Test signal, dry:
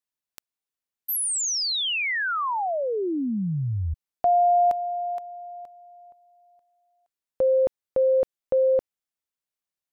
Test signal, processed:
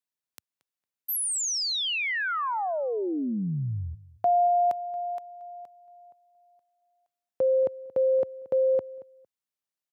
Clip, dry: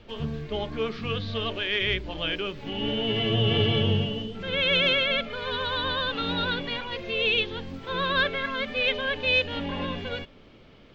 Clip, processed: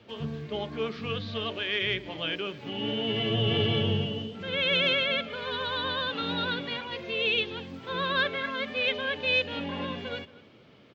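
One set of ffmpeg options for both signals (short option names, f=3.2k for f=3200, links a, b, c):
-filter_complex "[0:a]highpass=f=93:w=0.5412,highpass=f=93:w=1.3066,asplit=2[a][b];[b]adelay=228,lowpass=f=3k:p=1,volume=-18.5dB,asplit=2[c][d];[d]adelay=228,lowpass=f=3k:p=1,volume=0.19[e];[a][c][e]amix=inputs=3:normalize=0,volume=-2.5dB"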